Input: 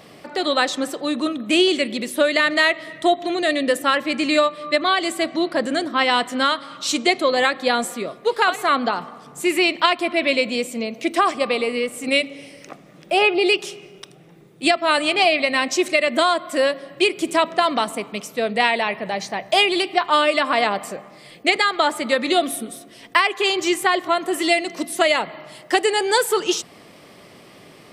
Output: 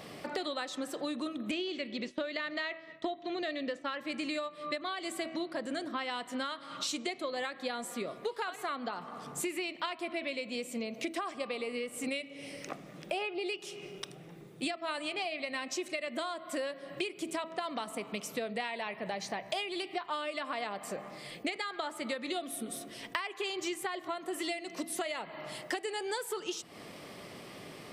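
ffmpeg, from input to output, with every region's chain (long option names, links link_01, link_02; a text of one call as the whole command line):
ffmpeg -i in.wav -filter_complex "[0:a]asettb=1/sr,asplit=3[link_01][link_02][link_03];[link_01]atrim=end=1.514[link_04];[link_02]atrim=start=1.51:end=4.01,asetpts=PTS-STARTPTS,afade=type=in:duration=0.004:curve=qsin,afade=type=out:start_time=2.496:duration=0.004:curve=qsin,lowpass=frequency=5800:width=0.5412,lowpass=frequency=5800:width=1.3066,agate=range=-33dB:threshold=-29dB:ratio=3:release=100:detection=peak[link_05];[link_03]atrim=start=4.006[link_06];[link_04][link_05]acrossfade=duration=0.004:curve1=hsin:curve2=qsin[link_07];[link_07][link_06]acrossfade=duration=0.004:curve1=qsin:curve2=hsin,bandreject=frequency=324.5:width_type=h:width=4,bandreject=frequency=649:width_type=h:width=4,bandreject=frequency=973.5:width_type=h:width=4,bandreject=frequency=1298:width_type=h:width=4,bandreject=frequency=1622.5:width_type=h:width=4,bandreject=frequency=1947:width_type=h:width=4,bandreject=frequency=2271.5:width_type=h:width=4,bandreject=frequency=2596:width_type=h:width=4,bandreject=frequency=2920.5:width_type=h:width=4,acompressor=threshold=-31dB:ratio=12,volume=-2dB" out.wav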